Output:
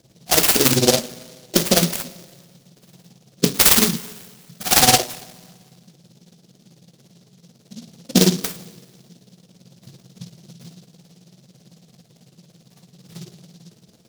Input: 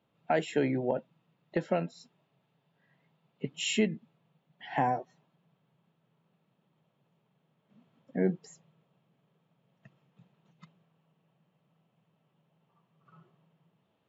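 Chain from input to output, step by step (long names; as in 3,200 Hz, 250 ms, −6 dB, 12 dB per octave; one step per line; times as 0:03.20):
low-pass that shuts in the quiet parts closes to 610 Hz, open at −27.5 dBFS
flat-topped bell 3,000 Hz +15 dB
downward compressor 4 to 1, threshold −36 dBFS, peak gain reduction 17 dB
amplitude tremolo 18 Hz, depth 100%
coupled-rooms reverb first 0.2 s, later 1.6 s, from −21 dB, DRR 4 dB
boost into a limiter +27 dB
short delay modulated by noise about 4,600 Hz, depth 0.24 ms
level −1 dB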